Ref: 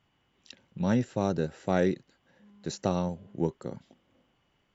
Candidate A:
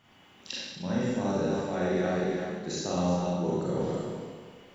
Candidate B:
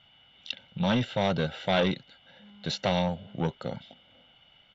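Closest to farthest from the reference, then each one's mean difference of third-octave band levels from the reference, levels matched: B, A; 5.0, 11.0 dB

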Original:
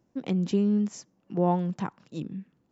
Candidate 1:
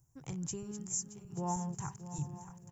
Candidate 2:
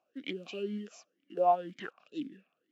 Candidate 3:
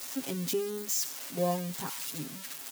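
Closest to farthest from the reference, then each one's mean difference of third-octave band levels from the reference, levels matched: 2, 1, 3; 6.0, 8.5, 14.5 dB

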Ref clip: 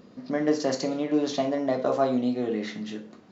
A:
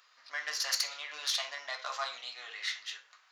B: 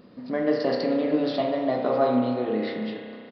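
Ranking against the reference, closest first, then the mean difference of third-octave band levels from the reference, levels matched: B, A; 4.0, 16.5 dB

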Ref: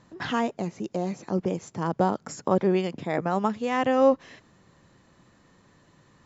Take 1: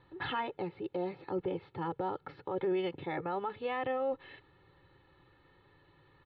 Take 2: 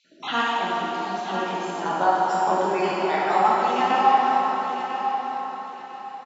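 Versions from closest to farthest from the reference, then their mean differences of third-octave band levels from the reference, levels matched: 1, 2; 5.0, 9.5 dB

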